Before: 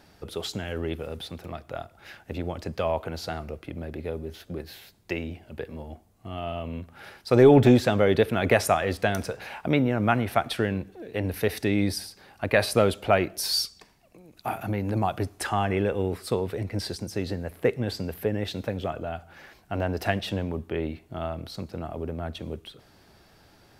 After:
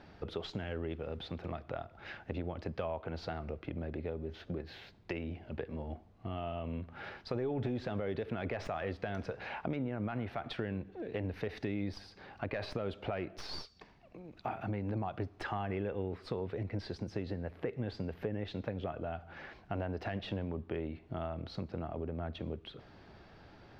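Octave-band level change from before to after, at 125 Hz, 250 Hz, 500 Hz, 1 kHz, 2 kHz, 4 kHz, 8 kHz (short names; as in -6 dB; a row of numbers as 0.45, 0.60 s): -10.5 dB, -12.0 dB, -13.5 dB, -12.5 dB, -13.5 dB, -14.5 dB, under -25 dB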